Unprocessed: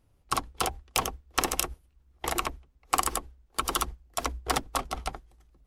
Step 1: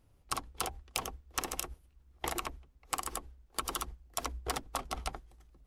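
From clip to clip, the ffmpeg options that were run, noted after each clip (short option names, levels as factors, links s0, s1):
-af "acompressor=threshold=0.0251:ratio=6"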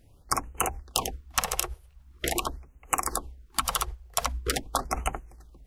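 -af "afftfilt=real='re*(1-between(b*sr/1024,220*pow(4400/220,0.5+0.5*sin(2*PI*0.44*pts/sr))/1.41,220*pow(4400/220,0.5+0.5*sin(2*PI*0.44*pts/sr))*1.41))':imag='im*(1-between(b*sr/1024,220*pow(4400/220,0.5+0.5*sin(2*PI*0.44*pts/sr))/1.41,220*pow(4400/220,0.5+0.5*sin(2*PI*0.44*pts/sr))*1.41))':win_size=1024:overlap=0.75,volume=2.82"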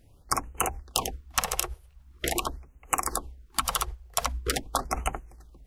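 -af anull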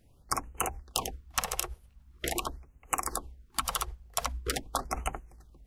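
-af "aeval=exprs='val(0)+0.000891*(sin(2*PI*50*n/s)+sin(2*PI*2*50*n/s)/2+sin(2*PI*3*50*n/s)/3+sin(2*PI*4*50*n/s)/4+sin(2*PI*5*50*n/s)/5)':c=same,volume=0.631"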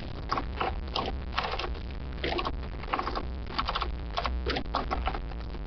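-af "aeval=exprs='val(0)+0.5*0.0299*sgn(val(0))':c=same,aresample=11025,aresample=44100"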